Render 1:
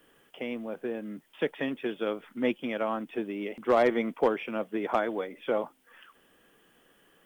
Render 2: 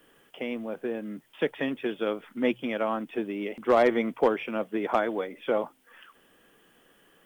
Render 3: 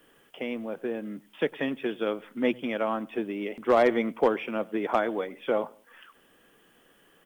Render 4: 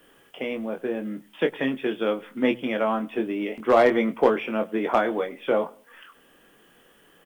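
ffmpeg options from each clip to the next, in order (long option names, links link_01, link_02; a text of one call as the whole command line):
ffmpeg -i in.wav -af "bandreject=frequency=61.42:width_type=h:width=4,bandreject=frequency=122.84:width_type=h:width=4,volume=2dB" out.wav
ffmpeg -i in.wav -filter_complex "[0:a]asplit=2[link_01][link_02];[link_02]adelay=101,lowpass=frequency=2000:poles=1,volume=-23.5dB,asplit=2[link_03][link_04];[link_04]adelay=101,lowpass=frequency=2000:poles=1,volume=0.37[link_05];[link_01][link_03][link_05]amix=inputs=3:normalize=0" out.wav
ffmpeg -i in.wav -filter_complex "[0:a]asplit=2[link_01][link_02];[link_02]adelay=23,volume=-6.5dB[link_03];[link_01][link_03]amix=inputs=2:normalize=0,volume=3dB" out.wav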